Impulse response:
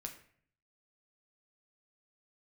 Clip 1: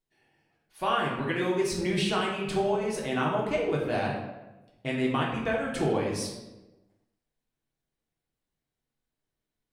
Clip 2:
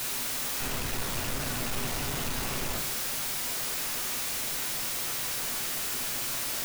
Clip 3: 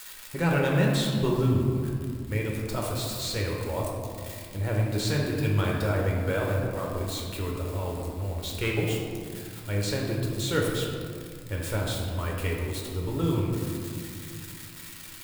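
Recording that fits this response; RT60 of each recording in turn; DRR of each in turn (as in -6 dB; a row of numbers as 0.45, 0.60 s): 2; 1.1, 0.55, 2.3 s; -3.5, 3.0, -2.0 dB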